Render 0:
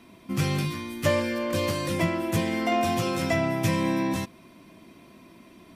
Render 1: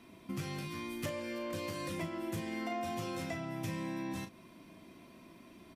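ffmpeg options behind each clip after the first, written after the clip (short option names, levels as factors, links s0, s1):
-filter_complex "[0:a]acompressor=threshold=0.0282:ratio=6,asplit=2[s0][s1];[s1]adelay=37,volume=0.398[s2];[s0][s2]amix=inputs=2:normalize=0,volume=0.531"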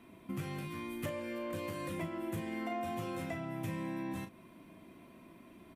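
-af "equalizer=f=5200:t=o:w=1:g=-10.5"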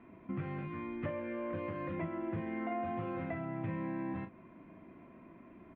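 -af "lowpass=f=2200:w=0.5412,lowpass=f=2200:w=1.3066,volume=1.12"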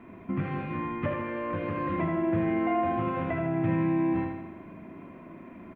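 -af "aecho=1:1:79|158|237|316|395|474|553|632:0.596|0.334|0.187|0.105|0.0586|0.0328|0.0184|0.0103,volume=2.51"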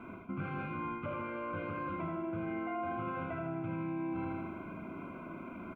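-af "equalizer=f=1600:w=2.3:g=13.5,areverse,acompressor=threshold=0.0178:ratio=6,areverse,asuperstop=centerf=1800:order=8:qfactor=3.3"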